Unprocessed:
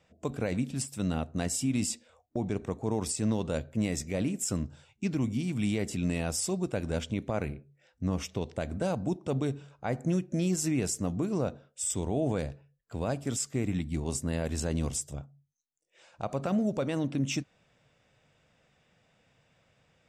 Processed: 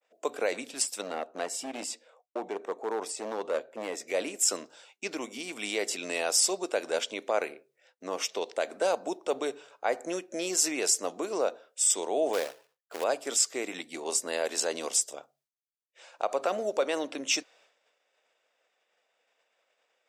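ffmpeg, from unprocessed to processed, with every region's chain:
ffmpeg -i in.wav -filter_complex "[0:a]asettb=1/sr,asplit=3[link_01][link_02][link_03];[link_01]atrim=end=1.014[link_04];[link_02]atrim=start=1.01:end=4.08,asetpts=PTS-STARTPTS,afade=type=in:duration=0.004:curve=qsin,afade=type=out:start_time=3.066:duration=0.004:curve=qsin,highshelf=frequency=2200:gain=-11.5,asoftclip=type=hard:threshold=-25.5dB[link_05];[link_03]atrim=start=4.076[link_06];[link_04][link_05]acrossfade=duration=0.004:curve1=hsin:curve2=qsin[link_07];[link_07][link_06]acrossfade=duration=0.004:curve1=qsin:curve2=hsin,asettb=1/sr,asplit=3[link_08][link_09][link_10];[link_08]atrim=end=12.334[link_11];[link_09]atrim=start=12.33:end=13.04,asetpts=PTS-STARTPTS,afade=type=in:duration=0.004:curve=qsin,afade=type=out:start_time=0.706:duration=0.004:curve=qsin,lowpass=frequency=2800:poles=1,acrusher=bits=3:mode=log:mix=0:aa=0.000001[link_12];[link_10]atrim=start=13.036[link_13];[link_11][link_12]acrossfade=duration=0.004:curve1=hsin:curve2=qsin[link_14];[link_14][link_13]acrossfade=duration=0.004:curve1=qsin:curve2=hsin,agate=range=-33dB:threshold=-59dB:ratio=3:detection=peak,highpass=frequency=420:width=0.5412,highpass=frequency=420:width=1.3066,adynamicequalizer=threshold=0.00447:dfrequency=4900:dqfactor=1.2:tfrequency=4900:tqfactor=1.2:attack=5:release=100:ratio=0.375:range=2.5:mode=boostabove:tftype=bell,volume=6dB" out.wav

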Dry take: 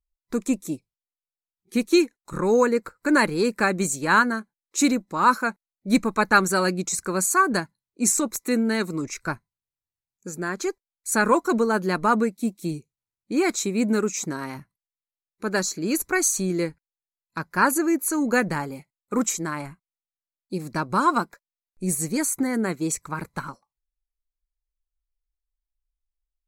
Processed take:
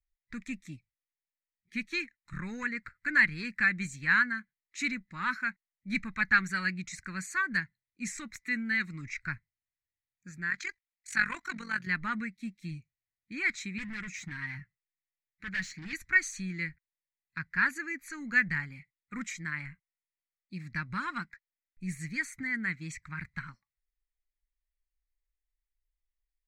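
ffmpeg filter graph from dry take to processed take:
ffmpeg -i in.wav -filter_complex "[0:a]asettb=1/sr,asplit=3[link_01][link_02][link_03];[link_01]atrim=end=10.504[link_04];[link_02]atrim=start=10.5:end=11.87,asetpts=PTS-STARTPTS,afade=type=in:duration=0.004:curve=qsin,afade=type=out:start_time=1.366:duration=0.004:curve=qsin,highshelf=frequency=4300:gain=10.5,tremolo=f=46:d=0.75,asplit=2[link_05][link_06];[link_06]highpass=frequency=720:poles=1,volume=8dB,asoftclip=type=tanh:threshold=-5dB[link_07];[link_05][link_07]amix=inputs=2:normalize=0,lowpass=frequency=4700:poles=1,volume=-6dB[link_08];[link_03]atrim=start=11.866[link_09];[link_04][link_08]acrossfade=duration=0.004:curve1=hsin:curve2=qsin[link_10];[link_10][link_09]acrossfade=duration=0.004:curve1=qsin:curve2=hsin,asettb=1/sr,asplit=3[link_11][link_12][link_13];[link_11]atrim=end=13.784[link_14];[link_12]atrim=start=13.78:end=15.93,asetpts=PTS-STARTPTS,afade=type=in:duration=0.004:curve=qsin,afade=type=out:start_time=2.146:duration=0.004:curve=qsin,aecho=1:1:6.4:0.5,atrim=end_sample=94815,volume=26.5dB,asoftclip=hard,volume=-26.5dB[link_15];[link_13]atrim=start=15.926[link_16];[link_14][link_15]acrossfade=duration=0.004:curve1=hsin:curve2=qsin[link_17];[link_17][link_16]acrossfade=duration=0.004:curve1=qsin:curve2=hsin,highshelf=frequency=12000:gain=3.5,acontrast=39,firequalizer=gain_entry='entry(110,0);entry(430,-29);entry(1000,-18);entry(1900,9);entry(2800,-4);entry(11000,-28)':delay=0.05:min_phase=1,volume=-8dB" out.wav

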